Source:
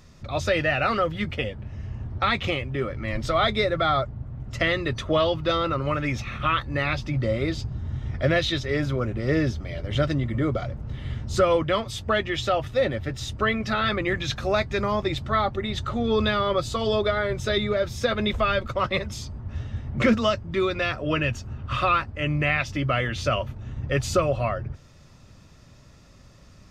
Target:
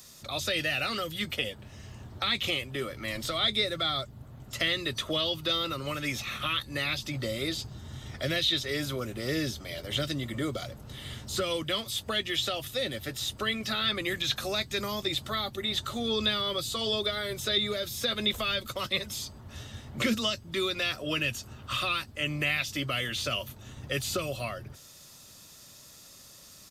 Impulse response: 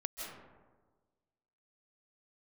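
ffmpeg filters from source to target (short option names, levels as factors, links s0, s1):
-filter_complex "[0:a]aemphasis=mode=production:type=bsi,aresample=32000,aresample=44100,acrossover=split=360|2200[s0][s1][s2];[s1]acompressor=threshold=0.02:ratio=6[s3];[s0][s3][s2]amix=inputs=3:normalize=0,aexciter=amount=1.8:drive=6.5:freq=3200,acrossover=split=3500[s4][s5];[s5]acompressor=threshold=0.0178:ratio=4:attack=1:release=60[s6];[s4][s6]amix=inputs=2:normalize=0,volume=0.794"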